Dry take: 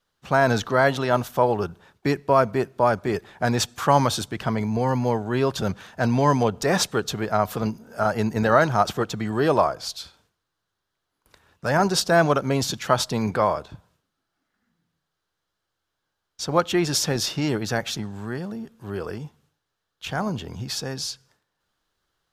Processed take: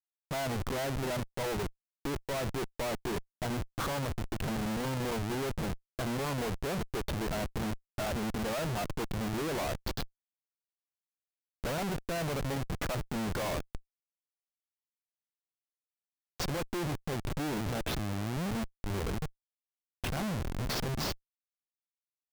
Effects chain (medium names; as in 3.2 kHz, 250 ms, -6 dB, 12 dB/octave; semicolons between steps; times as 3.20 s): low-pass that closes with the level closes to 1.1 kHz, closed at -18.5 dBFS; Schmitt trigger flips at -30.5 dBFS; trim -7.5 dB